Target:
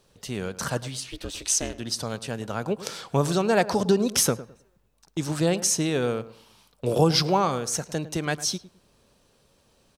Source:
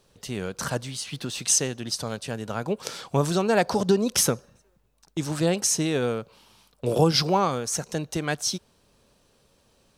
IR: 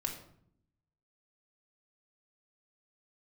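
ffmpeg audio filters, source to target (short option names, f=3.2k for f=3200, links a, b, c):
-filter_complex "[0:a]asettb=1/sr,asplit=3[a][b][c];[a]atrim=end=1.004[d];[b]atrim=start=1:end=1.79,asetpts=PTS-STARTPTS,afade=t=in:d=0.004:c=qsin,afade=t=out:st=0.786:d=0.004:c=qsin,aeval=exprs='val(0)*sin(2*PI*170*n/s)':c=same[e];[c]atrim=start=1.786[f];[d][e]acrossfade=d=0.004:c1=hsin:c2=qsin[g];[g][f]acrossfade=d=0.004:c1=qsin:c2=hsin,asplit=2[h][i];[i]adelay=106,lowpass=f=1.6k:p=1,volume=-15dB,asplit=2[j][k];[k]adelay=106,lowpass=f=1.6k:p=1,volume=0.25,asplit=2[l][m];[m]adelay=106,lowpass=f=1.6k:p=1,volume=0.25[n];[h][j][l][n]amix=inputs=4:normalize=0"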